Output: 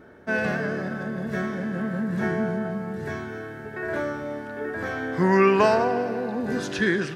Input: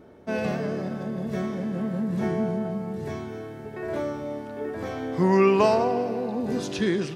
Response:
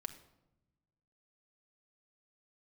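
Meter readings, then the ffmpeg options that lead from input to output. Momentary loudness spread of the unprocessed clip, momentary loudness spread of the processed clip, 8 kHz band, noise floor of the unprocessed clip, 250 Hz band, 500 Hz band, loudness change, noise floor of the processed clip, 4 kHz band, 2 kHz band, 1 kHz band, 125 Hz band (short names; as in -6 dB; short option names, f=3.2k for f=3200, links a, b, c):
14 LU, 14 LU, n/a, -39 dBFS, 0.0 dB, +0.5 dB, +1.0 dB, -38 dBFS, +1.0 dB, +9.0 dB, +2.0 dB, 0.0 dB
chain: -af "equalizer=f=1.6k:w=2.7:g=13.5"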